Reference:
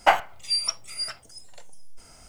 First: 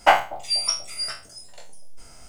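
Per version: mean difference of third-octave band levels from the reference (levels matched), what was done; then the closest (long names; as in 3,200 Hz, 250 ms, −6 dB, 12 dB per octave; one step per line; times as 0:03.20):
2.0 dB: peak hold with a decay on every bin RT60 0.34 s
bucket-brigade delay 241 ms, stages 1,024, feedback 56%, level −15 dB
level +1 dB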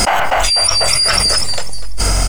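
15.0 dB: on a send: echo with shifted repeats 246 ms, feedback 48%, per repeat −45 Hz, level −13.5 dB
on the sum: envelope flattener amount 100%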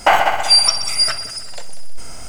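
7.0 dB: on a send: echo machine with several playback heads 63 ms, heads all three, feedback 56%, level −18 dB
on the sum: boost into a limiter +15.5 dB
level −1 dB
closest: first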